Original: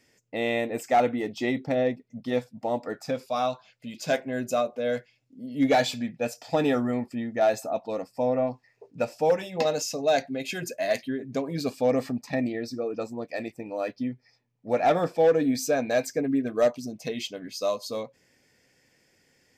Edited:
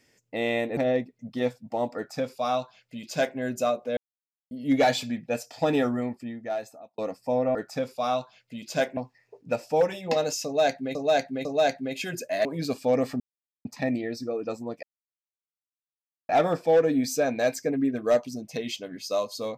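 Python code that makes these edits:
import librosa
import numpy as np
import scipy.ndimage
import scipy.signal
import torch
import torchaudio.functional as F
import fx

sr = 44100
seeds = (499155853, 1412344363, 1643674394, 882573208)

y = fx.edit(x, sr, fx.cut(start_s=0.77, length_s=0.91),
    fx.duplicate(start_s=2.87, length_s=1.42, to_s=8.46),
    fx.silence(start_s=4.88, length_s=0.54),
    fx.fade_out_span(start_s=6.72, length_s=1.17),
    fx.repeat(start_s=9.94, length_s=0.5, count=3),
    fx.cut(start_s=10.94, length_s=0.47),
    fx.insert_silence(at_s=12.16, length_s=0.45),
    fx.silence(start_s=13.34, length_s=1.46), tone=tone)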